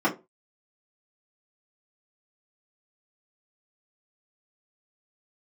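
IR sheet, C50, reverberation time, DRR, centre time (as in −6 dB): 13.5 dB, 0.25 s, −7.5 dB, 14 ms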